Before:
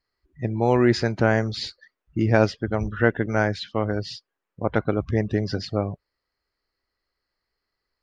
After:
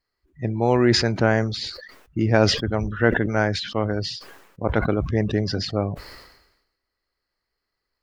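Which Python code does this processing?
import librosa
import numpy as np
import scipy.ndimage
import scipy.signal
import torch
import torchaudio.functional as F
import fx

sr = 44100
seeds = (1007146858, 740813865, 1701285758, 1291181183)

y = fx.sustainer(x, sr, db_per_s=61.0)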